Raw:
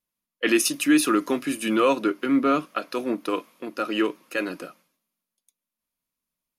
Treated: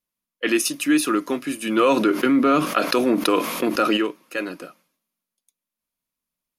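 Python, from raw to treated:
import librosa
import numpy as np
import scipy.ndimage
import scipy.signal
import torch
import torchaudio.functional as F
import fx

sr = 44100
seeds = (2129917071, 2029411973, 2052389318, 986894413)

y = fx.env_flatten(x, sr, amount_pct=70, at=(1.76, 3.96), fade=0.02)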